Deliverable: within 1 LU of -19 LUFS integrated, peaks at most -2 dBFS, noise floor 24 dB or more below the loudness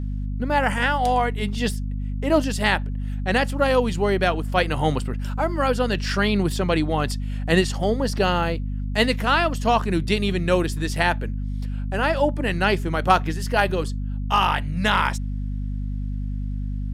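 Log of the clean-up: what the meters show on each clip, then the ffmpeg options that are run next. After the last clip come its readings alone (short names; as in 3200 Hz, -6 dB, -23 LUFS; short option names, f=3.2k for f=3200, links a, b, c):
hum 50 Hz; harmonics up to 250 Hz; hum level -24 dBFS; loudness -23.0 LUFS; peak -3.0 dBFS; loudness target -19.0 LUFS
-> -af "bandreject=f=50:t=h:w=4,bandreject=f=100:t=h:w=4,bandreject=f=150:t=h:w=4,bandreject=f=200:t=h:w=4,bandreject=f=250:t=h:w=4"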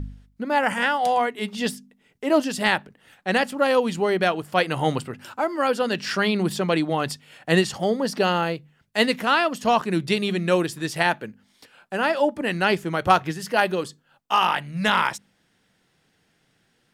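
hum none; loudness -23.0 LUFS; peak -3.5 dBFS; loudness target -19.0 LUFS
-> -af "volume=4dB,alimiter=limit=-2dB:level=0:latency=1"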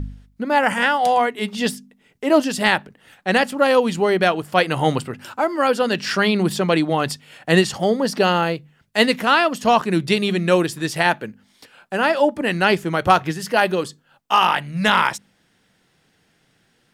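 loudness -19.0 LUFS; peak -2.0 dBFS; noise floor -63 dBFS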